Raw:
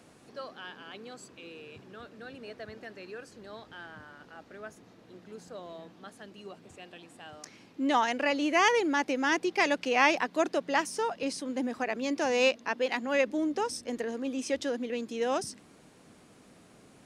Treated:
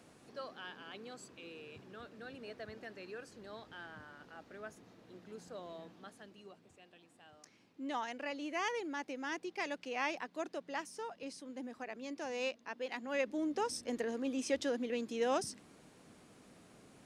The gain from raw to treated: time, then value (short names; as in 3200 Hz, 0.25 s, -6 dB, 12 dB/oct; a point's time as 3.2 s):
5.94 s -4 dB
6.8 s -13 dB
12.67 s -13 dB
13.78 s -3.5 dB